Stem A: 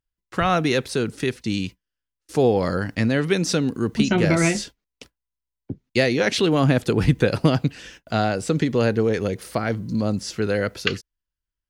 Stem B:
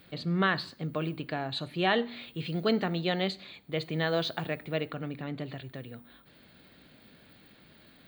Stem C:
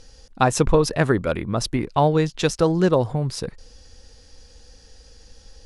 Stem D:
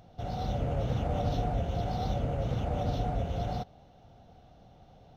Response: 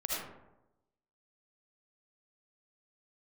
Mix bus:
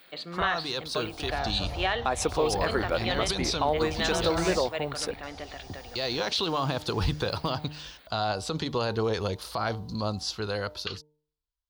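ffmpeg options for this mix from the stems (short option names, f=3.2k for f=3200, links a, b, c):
-filter_complex "[0:a]bandreject=f=150.6:t=h:w=4,bandreject=f=301.2:t=h:w=4,bandreject=f=451.8:t=h:w=4,bandreject=f=602.4:t=h:w=4,bandreject=f=753:t=h:w=4,bandreject=f=903.6:t=h:w=4,dynaudnorm=f=120:g=21:m=11.5dB,volume=-15dB[a];[1:a]highpass=600,volume=-3dB[b];[2:a]highpass=450,adelay=1650,volume=-7.5dB[c];[3:a]alimiter=level_in=10dB:limit=-24dB:level=0:latency=1:release=208,volume=-10dB,adelay=1050,volume=-0.5dB[d];[a][d]amix=inputs=2:normalize=0,equalizer=f=125:t=o:w=1:g=-11,equalizer=f=250:t=o:w=1:g=-9,equalizer=f=500:t=o:w=1:g=-4,equalizer=f=1k:t=o:w=1:g=11,equalizer=f=2k:t=o:w=1:g=-11,equalizer=f=4k:t=o:w=1:g=12,equalizer=f=8k:t=o:w=1:g=-6,alimiter=level_in=1dB:limit=-24dB:level=0:latency=1:release=42,volume=-1dB,volume=0dB[e];[b][c][e]amix=inputs=3:normalize=0,equalizer=f=75:w=0.54:g=8.5,acontrast=75,alimiter=limit=-14.5dB:level=0:latency=1:release=387"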